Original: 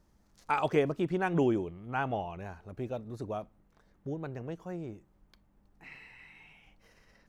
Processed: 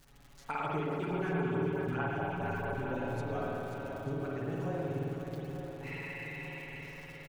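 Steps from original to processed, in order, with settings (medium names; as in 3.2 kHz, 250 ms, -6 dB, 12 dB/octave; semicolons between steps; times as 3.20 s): crackle 100 per s -47 dBFS; comb 7.2 ms, depth 81%; compression 10:1, threshold -37 dBFS, peak gain reduction 19 dB; shuffle delay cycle 889 ms, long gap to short 1.5:1, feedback 46%, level -7 dB; spring tank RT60 2.4 s, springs 52 ms, chirp 60 ms, DRR -4.5 dB; 0.67–3.01 s: LFO notch sine 4.6 Hz 530–7200 Hz; trim +1 dB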